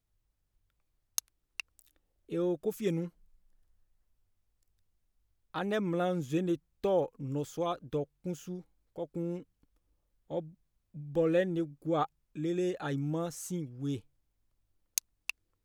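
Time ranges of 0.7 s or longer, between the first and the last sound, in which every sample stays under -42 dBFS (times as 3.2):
3.08–5.54
9.42–10.3
13.99–14.98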